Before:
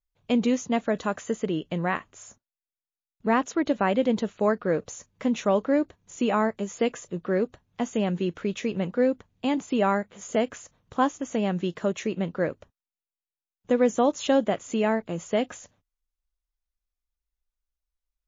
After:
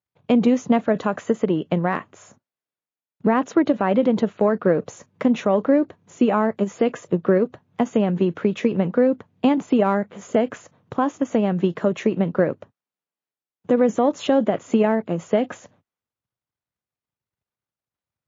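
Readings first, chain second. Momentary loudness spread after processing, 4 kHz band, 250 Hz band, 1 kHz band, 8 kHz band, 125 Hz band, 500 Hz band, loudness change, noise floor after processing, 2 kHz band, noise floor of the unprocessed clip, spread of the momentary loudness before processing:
6 LU, 0.0 dB, +6.5 dB, +3.0 dB, can't be measured, +6.5 dB, +5.5 dB, +5.5 dB, below −85 dBFS, +1.5 dB, below −85 dBFS, 7 LU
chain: low-pass filter 1,300 Hz 6 dB per octave
transient designer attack +10 dB, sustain +6 dB
high-pass filter 110 Hz 24 dB per octave
brickwall limiter −12.5 dBFS, peak gain reduction 11 dB
level +4.5 dB

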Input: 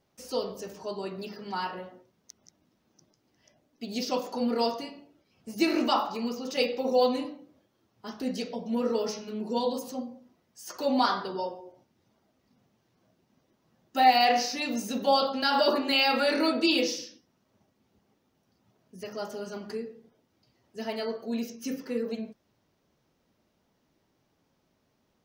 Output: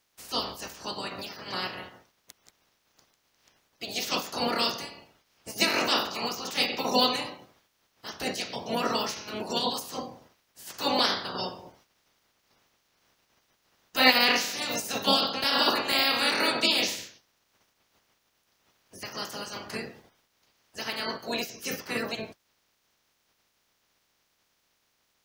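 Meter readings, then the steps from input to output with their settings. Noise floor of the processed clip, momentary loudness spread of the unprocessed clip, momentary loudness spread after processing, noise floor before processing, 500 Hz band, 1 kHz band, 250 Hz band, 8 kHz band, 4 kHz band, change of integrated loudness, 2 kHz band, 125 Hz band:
−73 dBFS, 18 LU, 17 LU, −73 dBFS, −4.0 dB, −2.5 dB, −4.5 dB, +5.5 dB, +6.0 dB, +1.0 dB, +5.0 dB, can't be measured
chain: ceiling on every frequency bin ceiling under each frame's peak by 25 dB

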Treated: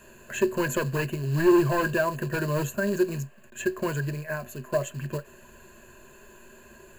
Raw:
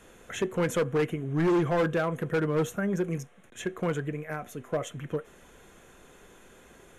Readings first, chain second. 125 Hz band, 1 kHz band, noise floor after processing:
+2.5 dB, +2.5 dB, −52 dBFS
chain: floating-point word with a short mantissa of 2 bits
EQ curve with evenly spaced ripples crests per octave 1.4, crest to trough 15 dB

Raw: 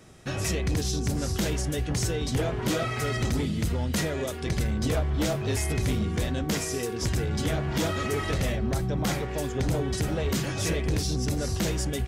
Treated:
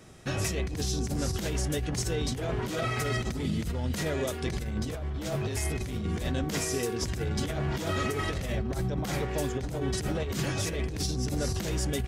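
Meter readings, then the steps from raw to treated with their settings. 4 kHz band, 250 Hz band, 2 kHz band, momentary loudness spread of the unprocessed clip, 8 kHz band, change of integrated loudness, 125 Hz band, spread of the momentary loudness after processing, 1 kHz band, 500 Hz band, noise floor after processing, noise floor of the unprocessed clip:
−2.5 dB, −3.5 dB, −2.5 dB, 2 LU, −2.5 dB, −3.0 dB, −3.5 dB, 3 LU, −2.0 dB, −2.5 dB, −35 dBFS, −32 dBFS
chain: compressor whose output falls as the input rises −28 dBFS, ratio −0.5
level −1.5 dB

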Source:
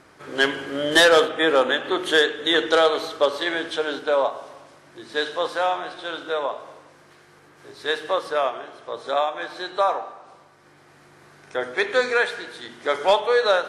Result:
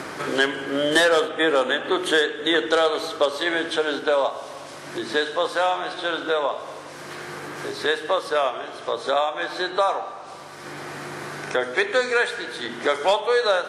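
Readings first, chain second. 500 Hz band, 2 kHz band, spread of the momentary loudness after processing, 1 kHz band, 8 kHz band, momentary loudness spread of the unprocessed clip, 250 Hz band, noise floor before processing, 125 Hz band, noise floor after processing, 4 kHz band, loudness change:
−0.5 dB, 0.0 dB, 15 LU, 0.0 dB, +0.5 dB, 14 LU, +1.5 dB, −53 dBFS, can't be measured, −39 dBFS, −1.0 dB, −1.0 dB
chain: dynamic equaliser 8,300 Hz, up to +5 dB, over −47 dBFS, Q 2
multiband upward and downward compressor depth 70%

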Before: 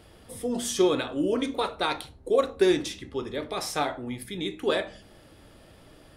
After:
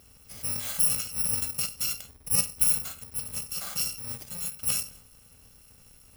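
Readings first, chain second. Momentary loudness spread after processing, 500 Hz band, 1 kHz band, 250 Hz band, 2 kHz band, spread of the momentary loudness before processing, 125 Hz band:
12 LU, −25.0 dB, −16.0 dB, −18.0 dB, −7.5 dB, 12 LU, −1.0 dB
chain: samples in bit-reversed order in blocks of 128 samples
level −2.5 dB

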